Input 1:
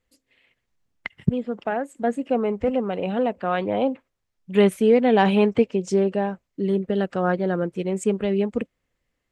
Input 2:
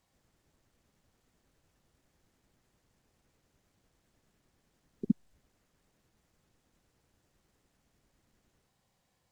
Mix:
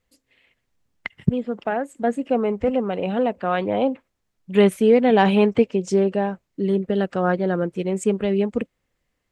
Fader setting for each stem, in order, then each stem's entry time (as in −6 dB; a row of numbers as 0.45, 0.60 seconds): +1.5, −10.0 decibels; 0.00, 0.00 seconds